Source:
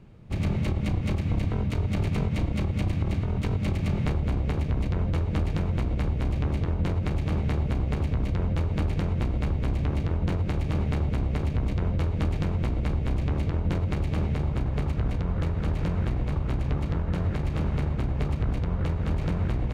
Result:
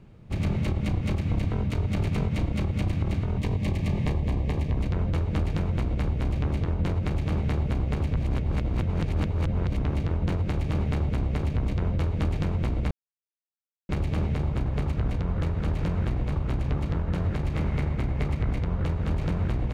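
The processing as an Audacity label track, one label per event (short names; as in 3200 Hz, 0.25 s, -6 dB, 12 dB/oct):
3.370000	4.780000	Butterworth band-stop 1400 Hz, Q 3.8
8.170000	9.850000	reverse
12.910000	13.890000	mute
17.540000	18.640000	bell 2100 Hz +6.5 dB 0.27 oct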